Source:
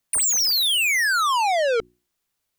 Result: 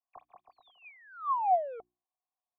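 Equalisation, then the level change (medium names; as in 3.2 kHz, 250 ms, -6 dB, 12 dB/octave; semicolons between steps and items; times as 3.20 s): cascade formant filter a; 0.0 dB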